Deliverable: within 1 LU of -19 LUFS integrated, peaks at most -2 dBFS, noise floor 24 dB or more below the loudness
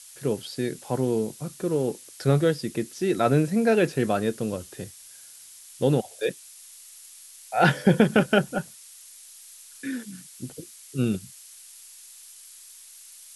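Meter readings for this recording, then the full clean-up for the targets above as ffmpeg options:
noise floor -48 dBFS; noise floor target -49 dBFS; loudness -25.0 LUFS; peak level -4.5 dBFS; loudness target -19.0 LUFS
-> -af "afftdn=nr=6:nf=-48"
-af "volume=2,alimiter=limit=0.794:level=0:latency=1"

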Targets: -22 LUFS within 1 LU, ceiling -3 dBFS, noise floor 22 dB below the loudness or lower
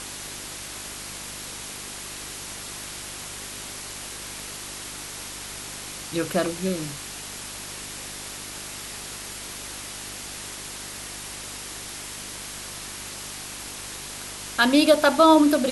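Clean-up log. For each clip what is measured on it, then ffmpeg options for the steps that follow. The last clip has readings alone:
hum 50 Hz; highest harmonic 400 Hz; hum level -46 dBFS; noise floor -37 dBFS; noise floor target -50 dBFS; loudness -27.5 LUFS; peak level -5.0 dBFS; loudness target -22.0 LUFS
-> -af "bandreject=f=50:t=h:w=4,bandreject=f=100:t=h:w=4,bandreject=f=150:t=h:w=4,bandreject=f=200:t=h:w=4,bandreject=f=250:t=h:w=4,bandreject=f=300:t=h:w=4,bandreject=f=350:t=h:w=4,bandreject=f=400:t=h:w=4"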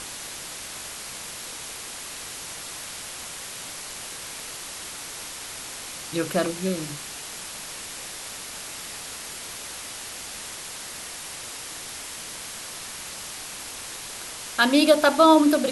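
hum not found; noise floor -37 dBFS; noise floor target -50 dBFS
-> -af "afftdn=nr=13:nf=-37"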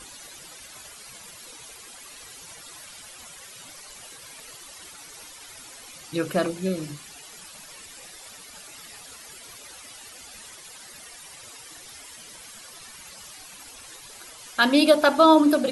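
noise floor -45 dBFS; loudness -20.5 LUFS; peak level -4.5 dBFS; loudness target -22.0 LUFS
-> -af "volume=0.841"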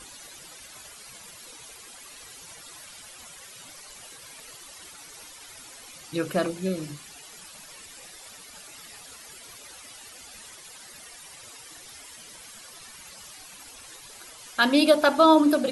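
loudness -22.0 LUFS; peak level -6.0 dBFS; noise floor -47 dBFS

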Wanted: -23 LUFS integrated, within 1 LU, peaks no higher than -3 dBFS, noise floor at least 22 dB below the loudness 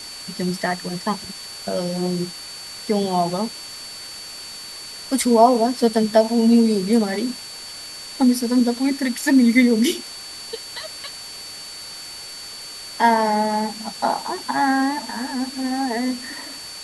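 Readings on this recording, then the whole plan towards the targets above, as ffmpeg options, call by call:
steady tone 4.5 kHz; tone level -35 dBFS; noise floor -36 dBFS; noise floor target -43 dBFS; loudness -20.5 LUFS; peak level -1.0 dBFS; loudness target -23.0 LUFS
-> -af "bandreject=f=4500:w=30"
-af "afftdn=nr=7:nf=-36"
-af "volume=0.75"

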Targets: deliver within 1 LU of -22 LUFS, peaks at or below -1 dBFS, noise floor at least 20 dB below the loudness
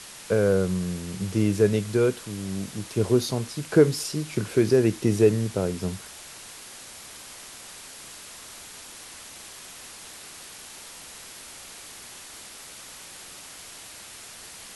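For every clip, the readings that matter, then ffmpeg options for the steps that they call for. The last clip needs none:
noise floor -44 dBFS; noise floor target -45 dBFS; loudness -24.5 LUFS; peak level -6.0 dBFS; loudness target -22.0 LUFS
-> -af "afftdn=nr=6:nf=-44"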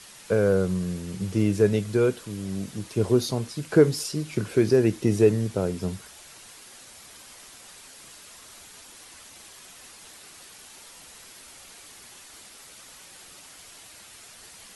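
noise floor -48 dBFS; loudness -24.5 LUFS; peak level -6.5 dBFS; loudness target -22.0 LUFS
-> -af "volume=1.33"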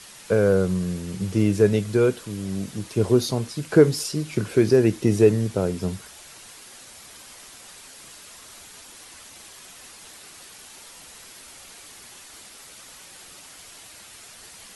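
loudness -22.0 LUFS; peak level -4.0 dBFS; noise floor -46 dBFS

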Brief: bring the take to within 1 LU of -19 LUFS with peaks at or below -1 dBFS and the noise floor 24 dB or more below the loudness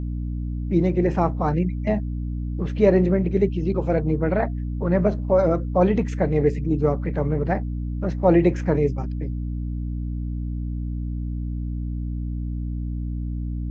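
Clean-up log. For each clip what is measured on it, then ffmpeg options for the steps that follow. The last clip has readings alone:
hum 60 Hz; highest harmonic 300 Hz; hum level -25 dBFS; loudness -23.5 LUFS; peak level -4.5 dBFS; loudness target -19.0 LUFS
-> -af "bandreject=f=60:t=h:w=6,bandreject=f=120:t=h:w=6,bandreject=f=180:t=h:w=6,bandreject=f=240:t=h:w=6,bandreject=f=300:t=h:w=6"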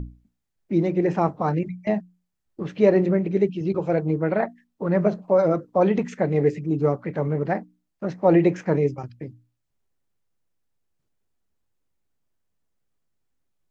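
hum not found; loudness -23.0 LUFS; peak level -5.5 dBFS; loudness target -19.0 LUFS
-> -af "volume=1.58"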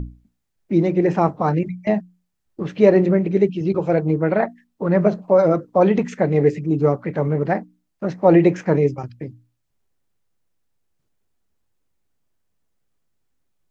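loudness -19.0 LUFS; peak level -1.5 dBFS; noise floor -73 dBFS

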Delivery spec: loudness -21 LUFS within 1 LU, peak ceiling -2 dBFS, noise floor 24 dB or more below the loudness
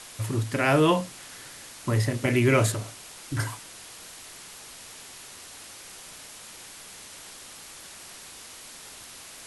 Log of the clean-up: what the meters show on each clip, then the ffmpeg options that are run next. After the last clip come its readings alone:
noise floor -45 dBFS; noise floor target -50 dBFS; loudness -25.5 LUFS; peak level -8.0 dBFS; loudness target -21.0 LUFS
-> -af "afftdn=nr=6:nf=-45"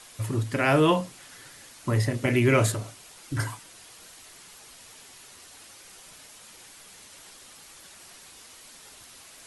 noise floor -50 dBFS; loudness -25.0 LUFS; peak level -8.0 dBFS; loudness target -21.0 LUFS
-> -af "volume=1.58"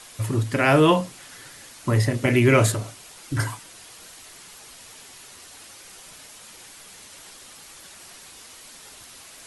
loudness -21.0 LUFS; peak level -4.0 dBFS; noise floor -46 dBFS

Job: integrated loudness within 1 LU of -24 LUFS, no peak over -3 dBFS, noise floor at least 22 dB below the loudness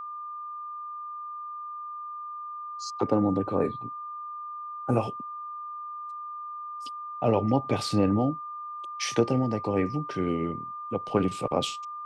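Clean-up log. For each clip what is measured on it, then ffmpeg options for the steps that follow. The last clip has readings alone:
steady tone 1.2 kHz; tone level -35 dBFS; loudness -30.0 LUFS; peak level -10.0 dBFS; loudness target -24.0 LUFS
-> -af "bandreject=f=1200:w=30"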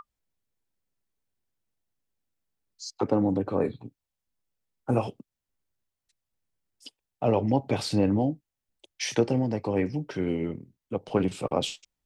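steady tone not found; loudness -28.0 LUFS; peak level -9.5 dBFS; loudness target -24.0 LUFS
-> -af "volume=1.58"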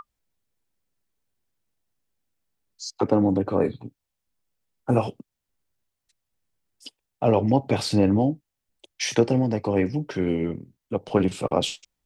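loudness -24.0 LUFS; peak level -5.5 dBFS; noise floor -83 dBFS

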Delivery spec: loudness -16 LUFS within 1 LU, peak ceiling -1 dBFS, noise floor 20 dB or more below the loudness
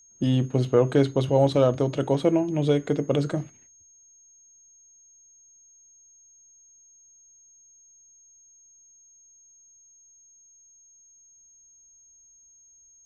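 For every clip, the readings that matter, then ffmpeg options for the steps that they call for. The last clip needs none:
steady tone 6.5 kHz; tone level -53 dBFS; loudness -23.0 LUFS; peak level -6.5 dBFS; loudness target -16.0 LUFS
-> -af "bandreject=f=6500:w=30"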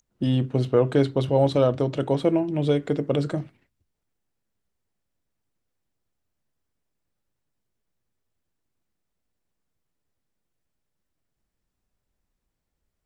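steady tone not found; loudness -23.5 LUFS; peak level -6.5 dBFS; loudness target -16.0 LUFS
-> -af "volume=2.37,alimiter=limit=0.891:level=0:latency=1"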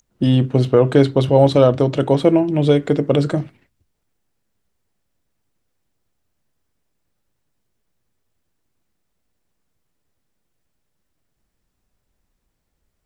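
loudness -16.0 LUFS; peak level -1.0 dBFS; noise floor -73 dBFS

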